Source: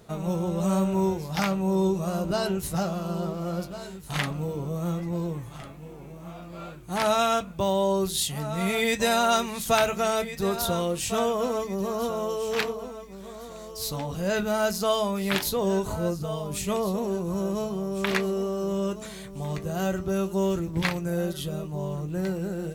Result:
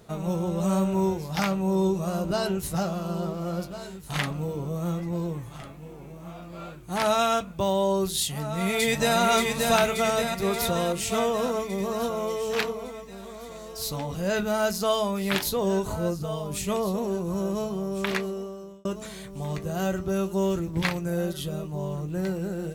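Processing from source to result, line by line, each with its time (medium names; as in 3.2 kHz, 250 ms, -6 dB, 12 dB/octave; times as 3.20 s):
8.21–9.18 s: echo throw 580 ms, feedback 65%, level -3 dB
17.94–18.85 s: fade out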